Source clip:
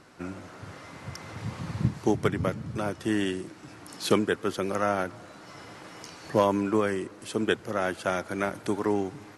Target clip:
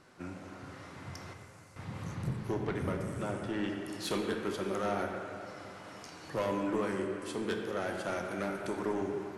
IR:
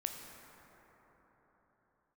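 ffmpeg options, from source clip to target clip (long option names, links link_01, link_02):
-filter_complex "[0:a]asoftclip=type=tanh:threshold=-21.5dB,asettb=1/sr,asplit=3[link_01][link_02][link_03];[link_01]atrim=end=1.334[link_04];[link_02]atrim=start=1.33:end=3.69,asetpts=PTS-STARTPTS,afade=type=in:duration=0.004:curve=qsin,afade=type=out:start_time=2.356:duration=0.004:curve=qsin,acrossover=split=5400[link_05][link_06];[link_05]adelay=430[link_07];[link_07][link_06]amix=inputs=2:normalize=0,atrim=end_sample=104076[link_08];[link_03]atrim=start=3.686[link_09];[link_04][link_08]acrossfade=duration=0.004:curve1=hsin:curve2=qsin[link_10];[link_10][link_09]acrossfade=duration=0.004:curve1=qsin:curve2=hsin[link_11];[1:a]atrim=start_sample=2205,asetrate=74970,aresample=44100[link_12];[link_11][link_12]afir=irnorm=-1:irlink=0"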